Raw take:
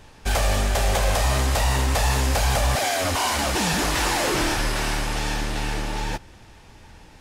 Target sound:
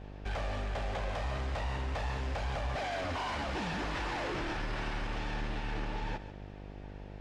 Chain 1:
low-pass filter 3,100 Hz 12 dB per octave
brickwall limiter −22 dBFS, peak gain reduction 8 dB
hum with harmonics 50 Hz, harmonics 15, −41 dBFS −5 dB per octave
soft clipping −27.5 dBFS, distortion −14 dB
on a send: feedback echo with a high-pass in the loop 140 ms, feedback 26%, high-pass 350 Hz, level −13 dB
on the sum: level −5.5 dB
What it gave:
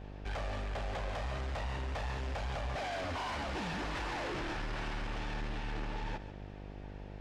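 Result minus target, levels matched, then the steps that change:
soft clipping: distortion +9 dB
change: soft clipping −21 dBFS, distortion −23 dB

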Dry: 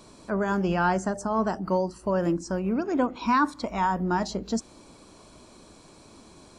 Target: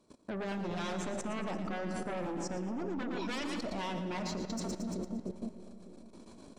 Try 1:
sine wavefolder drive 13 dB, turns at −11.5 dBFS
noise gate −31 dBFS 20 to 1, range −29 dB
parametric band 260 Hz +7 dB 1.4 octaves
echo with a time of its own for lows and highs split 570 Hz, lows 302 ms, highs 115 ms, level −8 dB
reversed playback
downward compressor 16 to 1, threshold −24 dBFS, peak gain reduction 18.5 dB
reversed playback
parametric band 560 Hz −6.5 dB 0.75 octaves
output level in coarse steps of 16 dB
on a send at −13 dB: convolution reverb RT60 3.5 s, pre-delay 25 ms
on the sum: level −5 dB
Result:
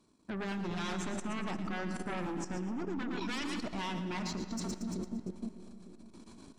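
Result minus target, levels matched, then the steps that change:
500 Hz band −3.5 dB
change: second parametric band 560 Hz +3.5 dB 0.75 octaves

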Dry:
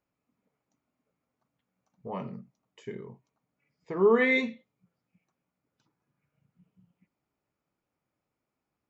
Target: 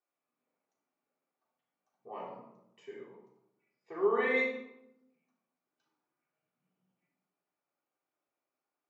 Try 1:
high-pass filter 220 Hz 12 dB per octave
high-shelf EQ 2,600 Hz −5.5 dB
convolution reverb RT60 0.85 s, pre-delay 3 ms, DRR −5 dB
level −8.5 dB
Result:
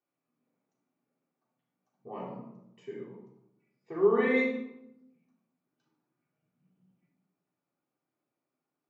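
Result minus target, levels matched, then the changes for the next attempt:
250 Hz band +5.5 dB
change: high-pass filter 510 Hz 12 dB per octave

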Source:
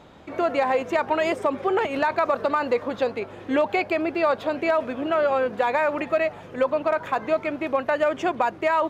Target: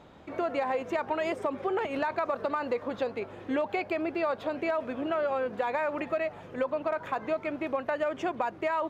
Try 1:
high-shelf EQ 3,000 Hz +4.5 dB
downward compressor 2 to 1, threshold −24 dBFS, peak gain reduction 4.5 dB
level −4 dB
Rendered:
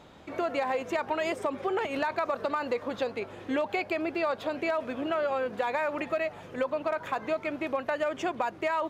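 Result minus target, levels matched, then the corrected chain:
8,000 Hz band +6.0 dB
high-shelf EQ 3,000 Hz −3.5 dB
downward compressor 2 to 1, threshold −24 dBFS, peak gain reduction 4.5 dB
level −4 dB

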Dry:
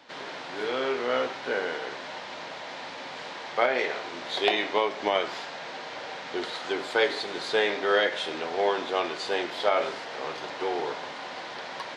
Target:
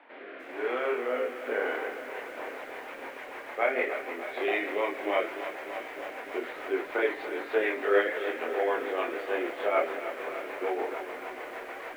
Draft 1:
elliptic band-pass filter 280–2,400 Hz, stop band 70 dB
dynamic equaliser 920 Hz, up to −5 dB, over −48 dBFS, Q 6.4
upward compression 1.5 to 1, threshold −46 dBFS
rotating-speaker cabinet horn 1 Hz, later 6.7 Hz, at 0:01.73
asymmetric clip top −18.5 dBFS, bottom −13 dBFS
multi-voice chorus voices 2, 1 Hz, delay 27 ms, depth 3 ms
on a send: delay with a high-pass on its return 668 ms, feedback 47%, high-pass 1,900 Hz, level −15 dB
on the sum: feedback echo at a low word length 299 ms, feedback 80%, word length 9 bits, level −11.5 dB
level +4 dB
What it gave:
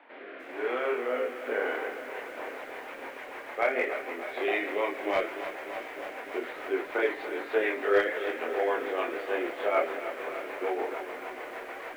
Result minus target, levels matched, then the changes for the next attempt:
asymmetric clip: distortion +6 dB
change: asymmetric clip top −9 dBFS, bottom −13 dBFS

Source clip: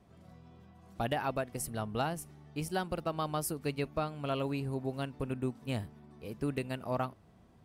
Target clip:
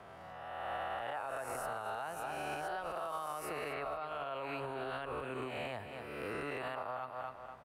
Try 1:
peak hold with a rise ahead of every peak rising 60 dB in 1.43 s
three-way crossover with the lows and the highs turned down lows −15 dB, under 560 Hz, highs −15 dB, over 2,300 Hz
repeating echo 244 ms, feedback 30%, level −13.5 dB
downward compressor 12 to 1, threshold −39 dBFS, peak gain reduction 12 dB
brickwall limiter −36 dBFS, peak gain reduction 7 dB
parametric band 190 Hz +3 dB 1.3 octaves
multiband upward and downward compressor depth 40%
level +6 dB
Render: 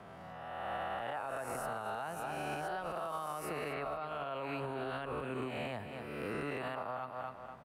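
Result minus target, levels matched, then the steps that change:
250 Hz band +3.5 dB
change: parametric band 190 Hz −4.5 dB 1.3 octaves

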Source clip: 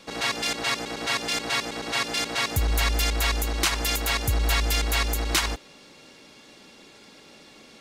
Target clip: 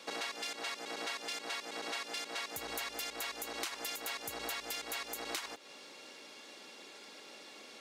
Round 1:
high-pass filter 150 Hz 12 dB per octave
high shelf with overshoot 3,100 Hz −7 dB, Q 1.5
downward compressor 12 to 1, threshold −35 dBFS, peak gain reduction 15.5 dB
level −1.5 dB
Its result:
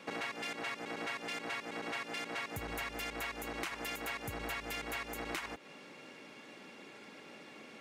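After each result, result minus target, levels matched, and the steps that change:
125 Hz band +14.0 dB; 8,000 Hz band −6.0 dB
change: high-pass filter 360 Hz 12 dB per octave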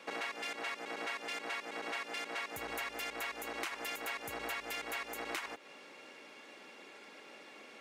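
8,000 Hz band −5.5 dB
remove: high shelf with overshoot 3,100 Hz −7 dB, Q 1.5

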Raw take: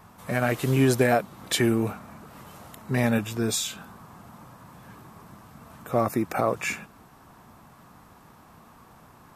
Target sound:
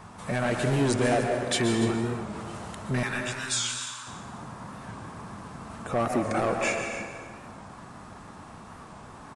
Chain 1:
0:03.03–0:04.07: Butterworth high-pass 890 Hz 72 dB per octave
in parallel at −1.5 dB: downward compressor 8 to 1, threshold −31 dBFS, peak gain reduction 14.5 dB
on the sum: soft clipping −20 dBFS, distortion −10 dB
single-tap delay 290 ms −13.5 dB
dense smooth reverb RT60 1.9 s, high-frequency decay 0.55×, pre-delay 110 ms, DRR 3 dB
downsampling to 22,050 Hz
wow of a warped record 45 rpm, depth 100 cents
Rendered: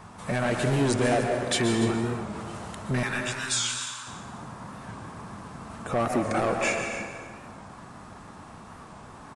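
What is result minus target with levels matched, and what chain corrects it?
downward compressor: peak gain reduction −9 dB
0:03.03–0:04.07: Butterworth high-pass 890 Hz 72 dB per octave
in parallel at −1.5 dB: downward compressor 8 to 1, threshold −41.5 dBFS, peak gain reduction 24 dB
on the sum: soft clipping −20 dBFS, distortion −11 dB
single-tap delay 290 ms −13.5 dB
dense smooth reverb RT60 1.9 s, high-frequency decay 0.55×, pre-delay 110 ms, DRR 3 dB
downsampling to 22,050 Hz
wow of a warped record 45 rpm, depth 100 cents

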